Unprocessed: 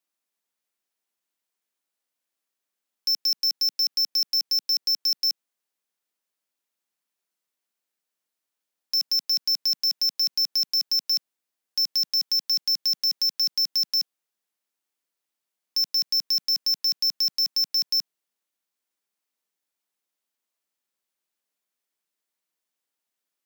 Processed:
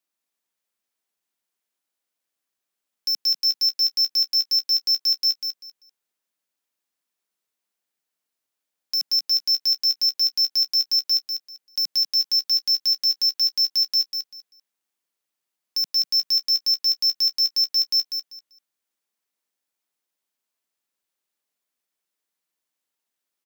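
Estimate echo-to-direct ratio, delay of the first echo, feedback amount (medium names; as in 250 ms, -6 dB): -6.5 dB, 195 ms, 22%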